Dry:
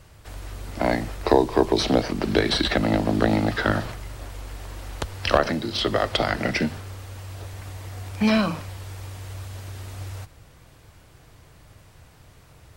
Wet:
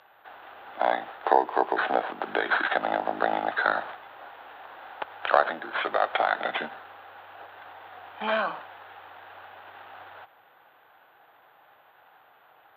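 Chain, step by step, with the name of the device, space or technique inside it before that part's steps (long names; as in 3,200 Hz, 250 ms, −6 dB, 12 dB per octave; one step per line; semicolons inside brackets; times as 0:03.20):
toy sound module (linearly interpolated sample-rate reduction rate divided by 8×; switching amplifier with a slow clock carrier 12,000 Hz; loudspeaker in its box 700–3,800 Hz, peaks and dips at 790 Hz +8 dB, 1,500 Hz +5 dB, 2,200 Hz −5 dB, 3,600 Hz +4 dB)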